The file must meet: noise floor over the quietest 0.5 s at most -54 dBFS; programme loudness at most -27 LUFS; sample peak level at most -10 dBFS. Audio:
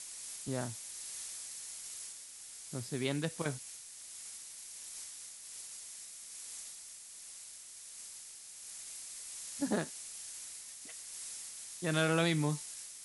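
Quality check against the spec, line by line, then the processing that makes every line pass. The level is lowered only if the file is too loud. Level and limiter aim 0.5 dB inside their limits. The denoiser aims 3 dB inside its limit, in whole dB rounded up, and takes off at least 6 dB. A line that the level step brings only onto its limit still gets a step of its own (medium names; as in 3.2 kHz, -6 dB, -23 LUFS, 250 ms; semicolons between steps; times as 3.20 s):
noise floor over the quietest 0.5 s -51 dBFS: fail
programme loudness -39.5 LUFS: pass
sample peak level -17.5 dBFS: pass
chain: noise reduction 6 dB, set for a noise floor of -51 dBFS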